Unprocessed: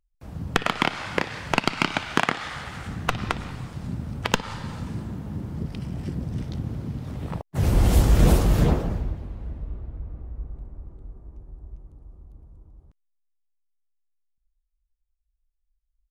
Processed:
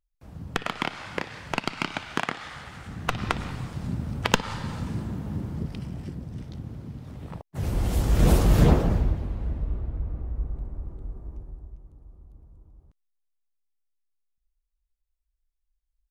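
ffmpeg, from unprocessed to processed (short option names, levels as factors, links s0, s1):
-af "volume=4.22,afade=t=in:st=2.87:d=0.54:silence=0.446684,afade=t=out:st=5.36:d=0.85:silence=0.398107,afade=t=in:st=7.98:d=1.01:silence=0.266073,afade=t=out:st=11.33:d=0.4:silence=0.421697"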